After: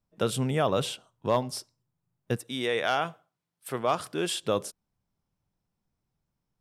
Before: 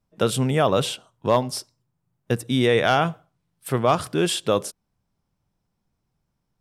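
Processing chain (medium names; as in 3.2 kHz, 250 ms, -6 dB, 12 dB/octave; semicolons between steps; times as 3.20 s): 2.36–4.41 s: high-pass 600 Hz -> 260 Hz 6 dB/octave; trim -6 dB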